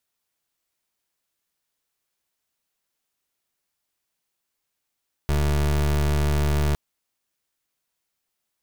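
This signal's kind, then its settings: pulse 73.5 Hz, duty 28% -21 dBFS 1.46 s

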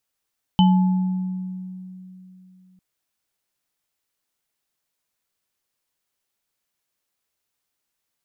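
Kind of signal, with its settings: sine partials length 2.20 s, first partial 185 Hz, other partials 861/3030 Hz, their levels -8/-9 dB, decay 3.19 s, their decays 1.25/0.23 s, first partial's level -11 dB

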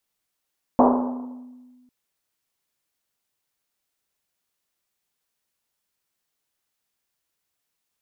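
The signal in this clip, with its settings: Risset drum, pitch 250 Hz, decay 1.68 s, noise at 710 Hz, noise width 680 Hz, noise 45%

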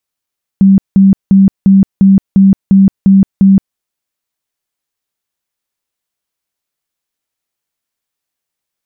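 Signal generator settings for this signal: tone bursts 194 Hz, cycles 33, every 0.35 s, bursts 9, -2 dBFS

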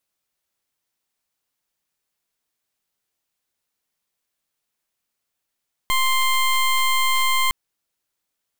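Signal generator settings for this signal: pulse 1.05 kHz, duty 18% -18.5 dBFS 1.61 s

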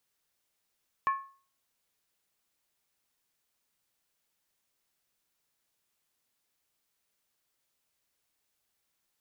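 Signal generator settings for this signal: skin hit, lowest mode 1.09 kHz, decay 0.41 s, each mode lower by 10.5 dB, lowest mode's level -21.5 dB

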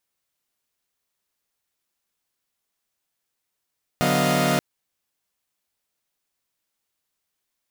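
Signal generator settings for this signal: chord D3/F#3/B3/D#5/F5 saw, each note -22.5 dBFS 0.58 s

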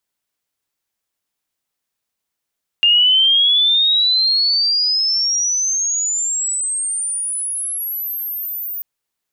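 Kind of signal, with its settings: sweep logarithmic 2.8 kHz -> 15 kHz -9 dBFS -> -23 dBFS 5.99 s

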